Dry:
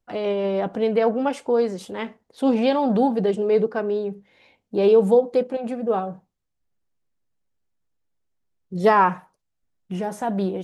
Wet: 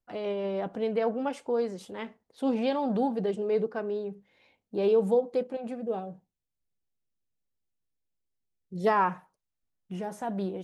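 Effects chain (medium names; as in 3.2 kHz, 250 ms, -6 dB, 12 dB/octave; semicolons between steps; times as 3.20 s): 5.83–8.87 s: peaking EQ 1.2 kHz -10 dB 0.94 oct; trim -8 dB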